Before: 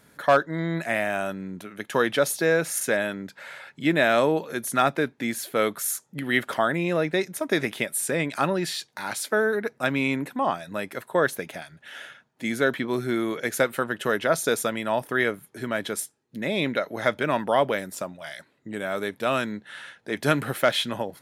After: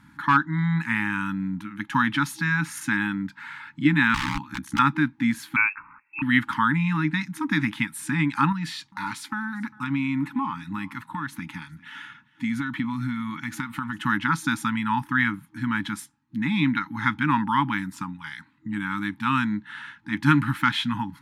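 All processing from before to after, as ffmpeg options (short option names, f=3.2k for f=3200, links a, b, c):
-filter_complex "[0:a]asettb=1/sr,asplit=3[a][b][c];[a]atrim=end=4.144[d];[b]atrim=start=4.14:end=4.79,asetpts=PTS-STARTPTS,afade=t=in:d=0.004:c=qsin,afade=t=out:st=0.646:d=0.004:c=qsin,aeval=exprs='(mod(10*val(0)+1,2)-1)/10':c=same,acrossover=split=9300[e][f];[f]acompressor=threshold=-38dB:ratio=4:attack=1:release=60[g];[e][g]amix=inputs=2:normalize=0,aeval=exprs='val(0)*sin(2*PI*33*n/s)':c=same[h];[c]atrim=start=4.786[i];[d][h]acrossfade=d=0.004:c1=hsin:c2=qsin[j];[j][i]acrossfade=d=0.004:c1=qsin:c2=hsin,asettb=1/sr,asplit=3[k][l][m];[k]atrim=end=5.564[n];[l]atrim=start=5.56:end=6.22,asetpts=PTS-STARTPTS,afade=t=in:d=0.004:c=qsin,afade=t=out:st=0.656:d=0.004:c=qsin,lowpass=f=2.4k:t=q:w=0.5098,lowpass=f=2.4k:t=q:w=0.6013,lowpass=f=2.4k:t=q:w=0.9,lowpass=f=2.4k:t=q:w=2.563,afreqshift=-2800,bandreject=f=220:w=6.4[o];[m]atrim=start=6.216[p];[n][o]acrossfade=d=0.004:c1=hsin:c2=qsin[q];[q][p]acrossfade=d=0.004:c1=qsin:c2=hsin,asettb=1/sr,asplit=3[r][s][t];[r]atrim=end=8.524[u];[s]atrim=start=8.52:end=14.02,asetpts=PTS-STARTPTS,afade=t=in:d=0.004:c=qsin,afade=t=out:st=5.496:d=0.004:c=qsin,acompressor=threshold=-27dB:ratio=3:attack=3.2:release=140:knee=1:detection=peak,bandreject=f=1.6k:w=12,aecho=1:1:401:0.075,atrim=end_sample=242550[v];[t]atrim=start=14.016[w];[u][v]acrossfade=d=0.004:c1=hsin:c2=qsin[x];[x][w]acrossfade=d=0.004:c1=qsin:c2=hsin,afftfilt=real='re*(1-between(b*sr/4096,320,820))':imag='im*(1-between(b*sr/4096,320,820))':win_size=4096:overlap=0.75,lowpass=f=1.3k:p=1,volume=7dB"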